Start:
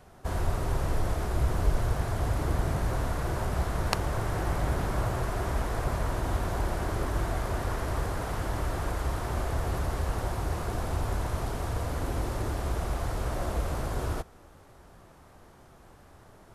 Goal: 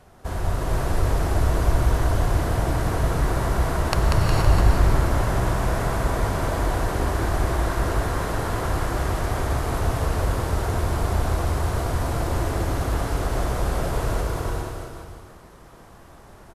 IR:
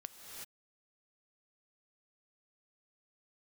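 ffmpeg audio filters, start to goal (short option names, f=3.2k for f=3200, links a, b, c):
-filter_complex "[0:a]asettb=1/sr,asplit=3[a][b][c];[a]atrim=end=4.024[d];[b]atrim=start=4.02:end=4.58,asetpts=PTS-STARTPTS,afade=t=in:d=0.004:c=qsin,afade=t=out:st=0.556:d=0.004:c=qsin,lowshelf=f=240:g=8.5[e];[c]atrim=start=4.576[f];[d][e]acrossfade=d=0.004:c1=hsin:c2=qsin[g];[g][f]acrossfade=d=0.004:c1=qsin:c2=hsin,aecho=1:1:190|361|514.9|653.4|778.1:0.631|0.398|0.251|0.158|0.1[h];[1:a]atrim=start_sample=2205,asetrate=35280,aresample=44100[i];[h][i]afir=irnorm=-1:irlink=0,volume=7dB"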